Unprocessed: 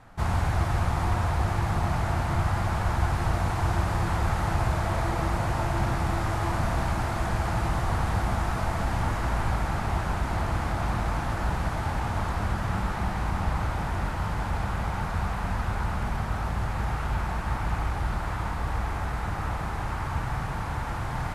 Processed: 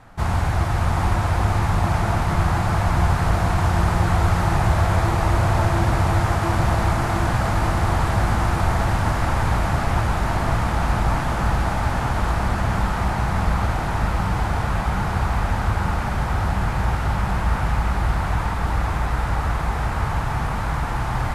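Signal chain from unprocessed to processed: diffused feedback echo 0.68 s, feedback 72%, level -5 dB; gain +4.5 dB

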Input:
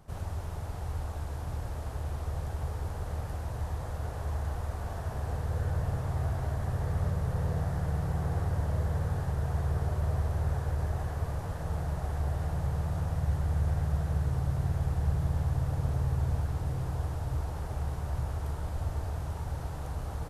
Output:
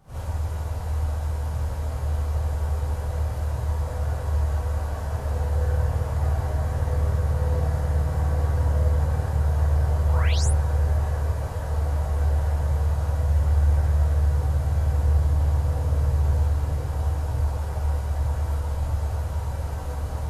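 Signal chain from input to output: painted sound rise, 10.09–10.46, 760–11000 Hz -39 dBFS; non-linear reverb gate 90 ms rising, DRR -8 dB; gain -3 dB

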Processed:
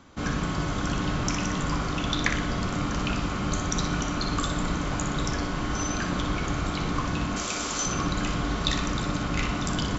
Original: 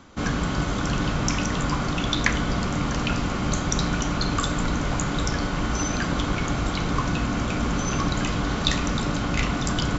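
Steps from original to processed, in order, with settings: 7.36–7.86 tone controls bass -13 dB, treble +15 dB; on a send: flutter echo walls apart 10.4 m, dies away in 0.53 s; on the sum: gain -4 dB

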